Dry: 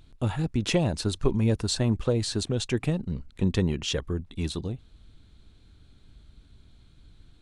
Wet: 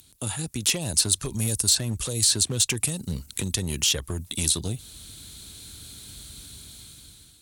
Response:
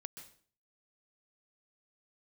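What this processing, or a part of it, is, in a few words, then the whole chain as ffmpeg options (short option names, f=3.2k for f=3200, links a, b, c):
FM broadcast chain: -filter_complex "[0:a]highpass=68,dynaudnorm=f=400:g=5:m=13.5dB,acrossover=split=97|4200[a][b][c];[a]acompressor=threshold=-25dB:ratio=4[d];[b]acompressor=threshold=-25dB:ratio=4[e];[c]acompressor=threshold=-41dB:ratio=4[f];[d][e][f]amix=inputs=3:normalize=0,aemphasis=mode=production:type=75fm,alimiter=limit=-14.5dB:level=0:latency=1:release=159,asoftclip=type=hard:threshold=-18.5dB,lowpass=f=15k:w=0.5412,lowpass=f=15k:w=1.3066,aemphasis=mode=production:type=75fm,volume=-2.5dB"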